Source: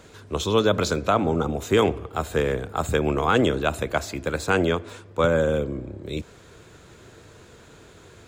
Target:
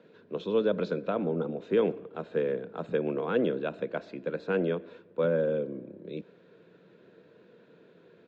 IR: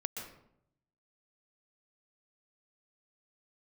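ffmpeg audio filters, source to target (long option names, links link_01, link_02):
-filter_complex "[0:a]highpass=frequency=170:width=0.5412,highpass=frequency=170:width=1.3066,equalizer=frequency=180:width_type=q:width=4:gain=7,equalizer=frequency=490:width_type=q:width=4:gain=6,equalizer=frequency=800:width_type=q:width=4:gain=-8,equalizer=frequency=1200:width_type=q:width=4:gain=-9,equalizer=frequency=2100:width_type=q:width=4:gain=-7,equalizer=frequency=3100:width_type=q:width=4:gain=-6,lowpass=frequency=3300:width=0.5412,lowpass=frequency=3300:width=1.3066,asplit=2[link_01][link_02];[link_02]adelay=120,highpass=300,lowpass=3400,asoftclip=type=hard:threshold=-13.5dB,volume=-26dB[link_03];[link_01][link_03]amix=inputs=2:normalize=0,volume=-8dB"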